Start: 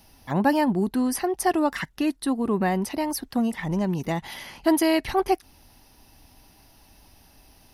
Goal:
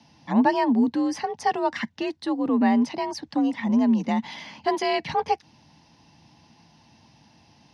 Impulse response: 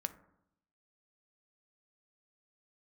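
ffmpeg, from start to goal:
-af "afreqshift=48,highpass=140,equalizer=frequency=160:width_type=q:width=4:gain=7,equalizer=frequency=230:width_type=q:width=4:gain=8,equalizer=frequency=390:width_type=q:width=4:gain=-10,equalizer=frequency=890:width_type=q:width=4:gain=3,equalizer=frequency=1300:width_type=q:width=4:gain=-6,lowpass=frequency=6000:width=0.5412,lowpass=frequency=6000:width=1.3066"

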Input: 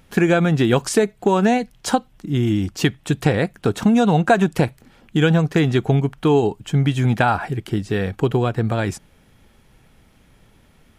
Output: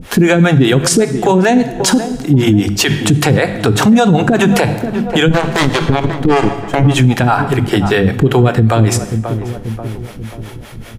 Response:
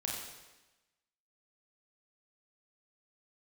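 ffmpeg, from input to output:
-filter_complex "[0:a]bandreject=frequency=50:width_type=h:width=6,bandreject=frequency=100:width_type=h:width=6,bandreject=frequency=150:width_type=h:width=6,bandreject=frequency=200:width_type=h:width=6,asettb=1/sr,asplit=3[link_01][link_02][link_03];[link_01]atrim=end=5.284[link_04];[link_02]atrim=start=5.28:end=6.83,asetpts=PTS-STARTPTS,afade=type=in:duration=0.004:curve=qsin,afade=type=out:start_time=1.546:duration=0.004:curve=qsin,aeval=exprs='0.562*(cos(1*acos(clip(val(0)/0.562,-1,1)))-cos(1*PI/2))+0.1*(cos(4*acos(clip(val(0)/0.562,-1,1)))-cos(4*PI/2))+0.112*(cos(7*acos(clip(val(0)/0.562,-1,1)))-cos(7*PI/2))':channel_layout=same[link_05];[link_03]atrim=start=6.826[link_06];[link_04][link_05]acrossfade=duration=0.004:curve1=hsin:curve2=qsin[link_07];[link_07][link_06]acrossfade=duration=0.004:curve1=qsin:curve2=hsin,acrossover=split=400[link_08][link_09];[link_08]aeval=exprs='val(0)*(1-1/2+1/2*cos(2*PI*5.1*n/s))':channel_layout=same[link_10];[link_09]aeval=exprs='val(0)*(1-1/2-1/2*cos(2*PI*5.1*n/s))':channel_layout=same[link_11];[link_10][link_11]amix=inputs=2:normalize=0,asplit=2[link_12][link_13];[link_13]adelay=536,lowpass=frequency=1100:poles=1,volume=-16dB,asplit=2[link_14][link_15];[link_15]adelay=536,lowpass=frequency=1100:poles=1,volume=0.46,asplit=2[link_16][link_17];[link_17]adelay=536,lowpass=frequency=1100:poles=1,volume=0.46,asplit=2[link_18][link_19];[link_19]adelay=536,lowpass=frequency=1100:poles=1,volume=0.46[link_20];[link_12][link_14][link_16][link_18][link_20]amix=inputs=5:normalize=0,asplit=2[link_21][link_22];[1:a]atrim=start_sample=2205,asetrate=61740,aresample=44100[link_23];[link_22][link_23]afir=irnorm=-1:irlink=0,volume=-10dB[link_24];[link_21][link_24]amix=inputs=2:normalize=0,acompressor=threshold=-42dB:ratio=1.5,alimiter=level_in=25dB:limit=-1dB:release=50:level=0:latency=1,volume=-1dB"

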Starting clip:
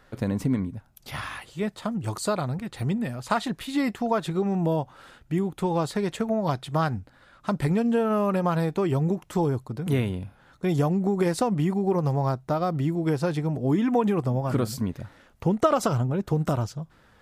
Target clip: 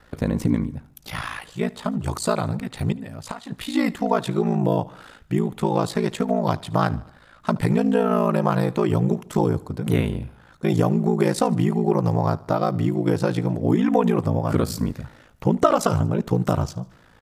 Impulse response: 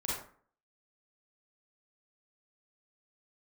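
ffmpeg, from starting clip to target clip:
-filter_complex "[0:a]asettb=1/sr,asplit=3[link_01][link_02][link_03];[link_01]atrim=end=2.924[link_04];[link_02]atrim=start=2.92:end=3.52,asetpts=PTS-STARTPTS,afade=type=in:duration=0.004:curve=qsin,afade=type=out:start_time=0.596:duration=0.004:curve=qsin,acompressor=threshold=-35dB:ratio=10[link_05];[link_03]atrim=start=3.516[link_06];[link_04][link_05]acrossfade=duration=0.004:curve1=hsin:curve2=qsin[link_07];[link_07][link_06]acrossfade=duration=0.004:curve1=qsin:curve2=hsin,aeval=exprs='val(0)*sin(2*PI*28*n/s)':channel_layout=same,aecho=1:1:75|150|225|300:0.0794|0.0437|0.024|0.0132,volume=6.5dB"

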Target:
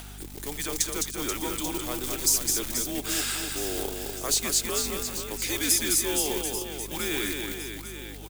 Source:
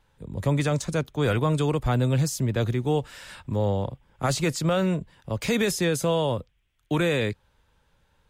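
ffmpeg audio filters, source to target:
ffmpeg -i in.wav -af "areverse,acompressor=threshold=-36dB:ratio=6,areverse,afreqshift=-130,aecho=1:1:210|483|837.9|1299|1899:0.631|0.398|0.251|0.158|0.1,acrusher=bits=5:mode=log:mix=0:aa=0.000001,lowshelf=frequency=190:width_type=q:width=1.5:gain=-10.5,crystalizer=i=5.5:c=0,acompressor=mode=upward:threshold=-40dB:ratio=2.5,aeval=exprs='val(0)+0.00501*(sin(2*PI*50*n/s)+sin(2*PI*2*50*n/s)/2+sin(2*PI*3*50*n/s)/3+sin(2*PI*4*50*n/s)/4+sin(2*PI*5*50*n/s)/5)':channel_layout=same,volume=4dB" out.wav

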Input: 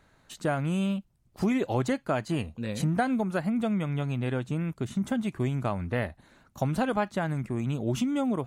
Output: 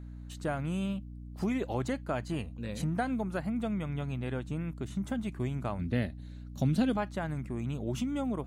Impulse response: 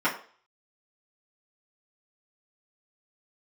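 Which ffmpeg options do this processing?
-filter_complex "[0:a]asettb=1/sr,asplit=3[link_01][link_02][link_03];[link_01]atrim=end=5.794[link_04];[link_02]atrim=start=5.79:end=6.97,asetpts=PTS-STARTPTS,afade=type=in:duration=0.004:curve=qsin,afade=type=out:start_time=1.176:duration=0.004:curve=qsin,equalizer=frequency=125:width_type=o:width=1:gain=5,equalizer=frequency=250:width_type=o:width=1:gain=8,equalizer=frequency=1000:width_type=o:width=1:gain=-9,equalizer=frequency=4000:width_type=o:width=1:gain=8[link_05];[link_03]atrim=start=6.966[link_06];[link_04][link_05]acrossfade=duration=0.004:curve1=hsin:curve2=qsin[link_07];[link_07][link_06]acrossfade=duration=0.004:curve1=qsin:curve2=hsin,aeval=exprs='val(0)+0.0141*(sin(2*PI*60*n/s)+sin(2*PI*2*60*n/s)/2+sin(2*PI*3*60*n/s)/3+sin(2*PI*4*60*n/s)/4+sin(2*PI*5*60*n/s)/5)':channel_layout=same,volume=-5.5dB"

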